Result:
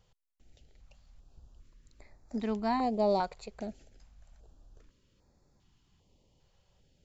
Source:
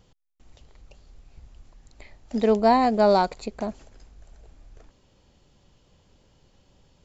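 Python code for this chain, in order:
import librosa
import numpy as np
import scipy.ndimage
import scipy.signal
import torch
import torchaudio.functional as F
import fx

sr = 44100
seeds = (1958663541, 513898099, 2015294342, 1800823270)

y = fx.high_shelf(x, sr, hz=4400.0, db=-5.0, at=(2.36, 3.4))
y = fx.filter_held_notch(y, sr, hz=2.5, low_hz=270.0, high_hz=3000.0)
y = y * 10.0 ** (-8.0 / 20.0)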